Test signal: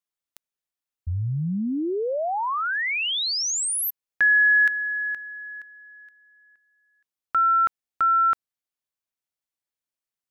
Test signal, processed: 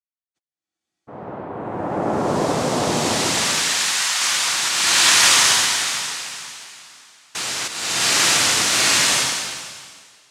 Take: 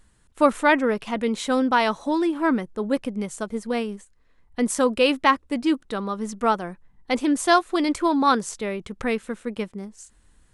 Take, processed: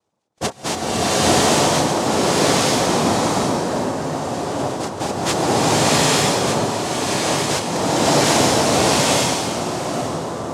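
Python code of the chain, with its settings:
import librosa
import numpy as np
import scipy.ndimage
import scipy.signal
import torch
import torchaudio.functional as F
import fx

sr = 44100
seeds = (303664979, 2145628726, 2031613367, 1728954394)

y = fx.spec_topn(x, sr, count=32)
y = fx.noise_vocoder(y, sr, seeds[0], bands=2)
y = fx.rev_bloom(y, sr, seeds[1], attack_ms=900, drr_db=-11.5)
y = F.gain(torch.from_numpy(y), -6.5).numpy()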